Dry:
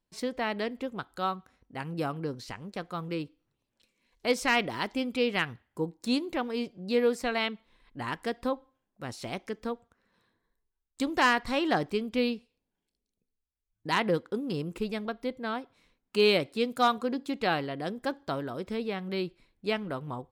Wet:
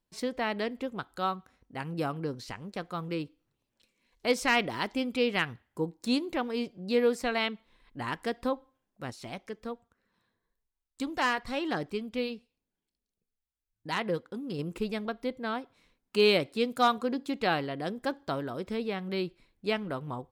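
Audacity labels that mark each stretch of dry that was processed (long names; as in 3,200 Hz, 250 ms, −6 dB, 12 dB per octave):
9.100000	14.590000	flanger 1.1 Hz, delay 0.4 ms, depth 1.6 ms, regen −68%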